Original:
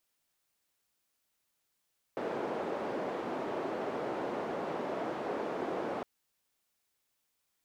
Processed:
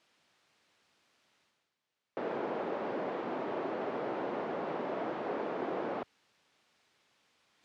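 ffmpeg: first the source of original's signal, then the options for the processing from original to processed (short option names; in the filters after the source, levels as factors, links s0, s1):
-f lavfi -i "anoisesrc=c=white:d=3.86:r=44100:seed=1,highpass=f=340,lowpass=f=520,volume=-11.7dB"
-af "highpass=110,lowpass=4000,areverse,acompressor=mode=upward:threshold=0.00112:ratio=2.5,areverse"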